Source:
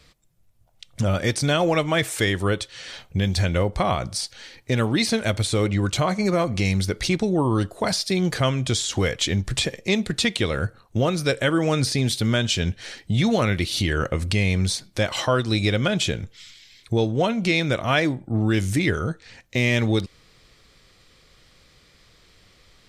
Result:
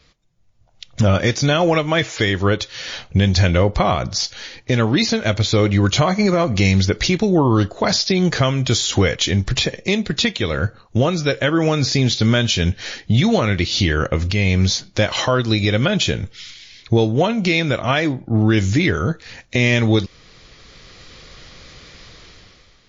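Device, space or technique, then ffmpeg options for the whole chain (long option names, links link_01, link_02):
low-bitrate web radio: -af "dynaudnorm=framelen=150:gausssize=9:maxgain=14dB,alimiter=limit=-6dB:level=0:latency=1:release=314" -ar 16000 -c:a libmp3lame -b:a 32k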